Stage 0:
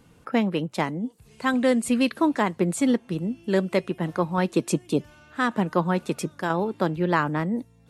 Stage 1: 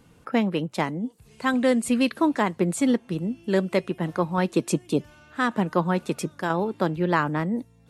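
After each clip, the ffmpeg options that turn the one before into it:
ffmpeg -i in.wav -af anull out.wav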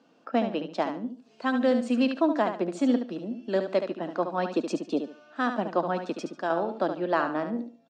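ffmpeg -i in.wav -filter_complex "[0:a]highpass=frequency=240:width=0.5412,highpass=frequency=240:width=1.3066,equalizer=frequency=250:width_type=q:width=4:gain=3,equalizer=frequency=410:width_type=q:width=4:gain=-4,equalizer=frequency=660:width_type=q:width=4:gain=8,equalizer=frequency=960:width_type=q:width=4:gain=-3,equalizer=frequency=2100:width_type=q:width=4:gain=-9,equalizer=frequency=3600:width_type=q:width=4:gain=-3,lowpass=frequency=5500:width=0.5412,lowpass=frequency=5500:width=1.3066,asplit=2[link_01][link_02];[link_02]aecho=0:1:72|144|216:0.398|0.0995|0.0249[link_03];[link_01][link_03]amix=inputs=2:normalize=0,volume=-3dB" out.wav

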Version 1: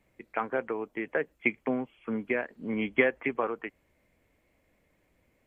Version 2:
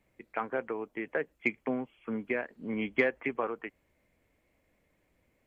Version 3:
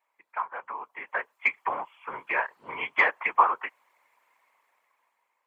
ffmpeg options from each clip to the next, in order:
ffmpeg -i in.wav -af "acontrast=36,volume=-8dB" out.wav
ffmpeg -i in.wav -af "highpass=frequency=990:width_type=q:width=5.6,afftfilt=real='hypot(re,im)*cos(2*PI*random(0))':imag='hypot(re,im)*sin(2*PI*random(1))':win_size=512:overlap=0.75,dynaudnorm=framelen=260:gausssize=9:maxgain=12dB" out.wav

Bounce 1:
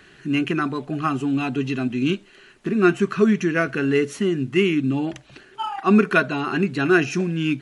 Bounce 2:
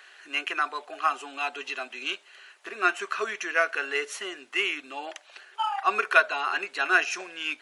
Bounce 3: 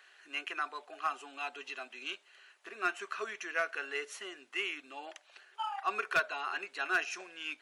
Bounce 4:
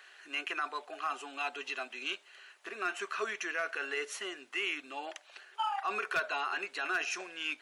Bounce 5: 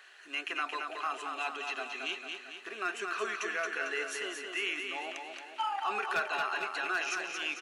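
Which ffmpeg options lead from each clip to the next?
ffmpeg -i in.wav -af "highpass=frequency=610:width=0.5412,highpass=frequency=610:width=1.3066" out.wav
ffmpeg -i in.wav -af "asoftclip=type=hard:threshold=-13dB,volume=-9dB" out.wav
ffmpeg -i in.wav -af "alimiter=level_in=5.5dB:limit=-24dB:level=0:latency=1:release=14,volume=-5.5dB,volume=4.5dB" out.wav
ffmpeg -i in.wav -af "aecho=1:1:224|448|672|896|1120|1344|1568:0.562|0.304|0.164|0.0885|0.0478|0.0258|0.0139" out.wav

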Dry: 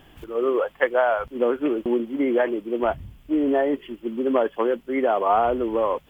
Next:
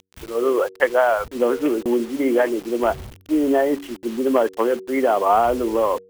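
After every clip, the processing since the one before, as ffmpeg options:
ffmpeg -i in.wav -af "acrusher=bits=6:mix=0:aa=0.000001,bandreject=frequency=94.42:width_type=h:width=4,bandreject=frequency=188.84:width_type=h:width=4,bandreject=frequency=283.26:width_type=h:width=4,bandreject=frequency=377.68:width_type=h:width=4,bandreject=frequency=472.1:width_type=h:width=4,volume=3dB" out.wav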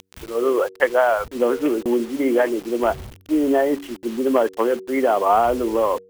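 ffmpeg -i in.wav -af "acompressor=mode=upward:threshold=-37dB:ratio=2.5" out.wav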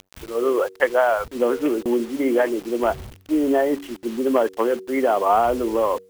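ffmpeg -i in.wav -af "acrusher=bits=10:mix=0:aa=0.000001,volume=-1dB" out.wav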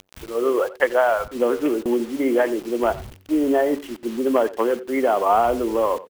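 ffmpeg -i in.wav -filter_complex "[0:a]asplit=2[link_01][link_02];[link_02]adelay=90,highpass=300,lowpass=3400,asoftclip=type=hard:threshold=-14.5dB,volume=-17dB[link_03];[link_01][link_03]amix=inputs=2:normalize=0" out.wav

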